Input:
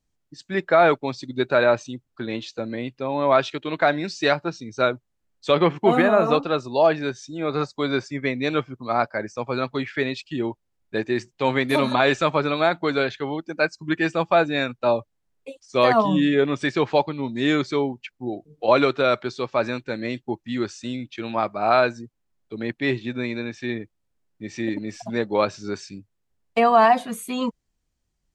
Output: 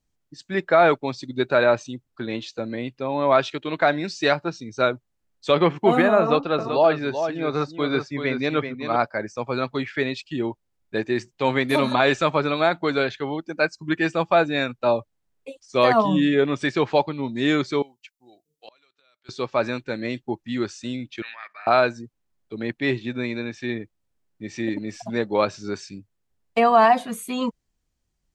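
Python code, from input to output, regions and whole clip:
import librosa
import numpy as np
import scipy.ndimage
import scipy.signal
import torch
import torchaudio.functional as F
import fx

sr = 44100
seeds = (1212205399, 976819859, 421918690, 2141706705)

y = fx.chain(x, sr, fx.lowpass(hz=5100.0, slope=12),
    fx.echo_single(ms=383, db=-8.0), at=(6.2, 8.96))
y = fx.chain(y, sr, fx.pre_emphasis(coefficient=0.97),
    fx.gate_flip(shuts_db=-30.0, range_db=-28), at=(17.82, 19.29))
y = fx.chain(y, sr, fx.high_shelf(hz=9400.0, db=-9.5),
    fx.level_steps(step_db=17),
    fx.highpass_res(hz=1800.0, q=12.0), at=(21.22, 21.67))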